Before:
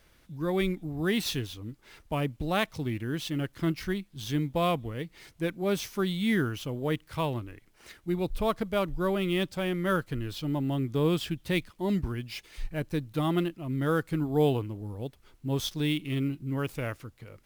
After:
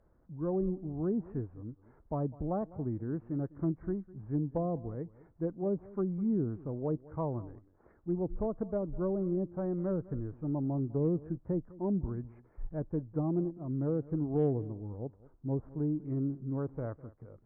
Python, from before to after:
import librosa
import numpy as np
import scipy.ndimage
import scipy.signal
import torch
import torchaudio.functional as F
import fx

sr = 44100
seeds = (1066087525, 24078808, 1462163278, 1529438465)

y = scipy.ndimage.gaussian_filter1d(x, 8.7, mode='constant')
y = fx.low_shelf(y, sr, hz=460.0, db=-4.0)
y = fx.env_lowpass_down(y, sr, base_hz=530.0, full_db=-27.0)
y = fx.cheby_harmonics(y, sr, harmonics=(5, 7), levels_db=(-33, -39), full_scale_db=-19.5)
y = y + 10.0 ** (-20.0 / 20.0) * np.pad(y, (int(203 * sr / 1000.0), 0))[:len(y)]